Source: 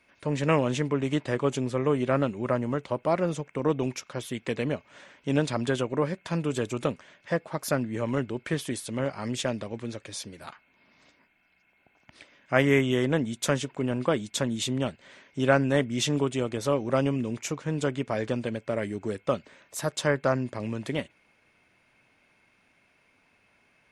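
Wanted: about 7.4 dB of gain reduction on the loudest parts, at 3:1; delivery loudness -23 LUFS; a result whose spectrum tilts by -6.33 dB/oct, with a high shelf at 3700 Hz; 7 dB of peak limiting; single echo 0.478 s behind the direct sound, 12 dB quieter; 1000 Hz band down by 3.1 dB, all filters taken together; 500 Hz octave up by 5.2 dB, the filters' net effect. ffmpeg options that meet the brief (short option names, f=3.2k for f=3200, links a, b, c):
-af "equalizer=f=500:t=o:g=8,equalizer=f=1k:t=o:g=-7,highshelf=f=3.7k:g=-8,acompressor=threshold=-24dB:ratio=3,alimiter=limit=-19.5dB:level=0:latency=1,aecho=1:1:478:0.251,volume=8.5dB"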